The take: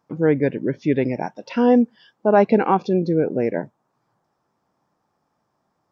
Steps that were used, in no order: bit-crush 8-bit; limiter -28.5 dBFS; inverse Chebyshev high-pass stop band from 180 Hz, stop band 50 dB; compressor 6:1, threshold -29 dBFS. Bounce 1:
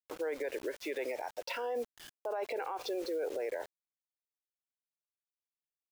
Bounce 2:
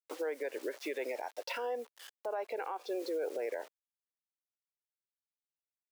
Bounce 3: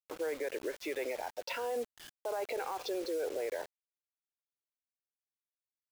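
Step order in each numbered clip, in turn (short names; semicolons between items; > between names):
inverse Chebyshev high-pass > bit-crush > limiter > compressor; bit-crush > inverse Chebyshev high-pass > compressor > limiter; inverse Chebyshev high-pass > limiter > compressor > bit-crush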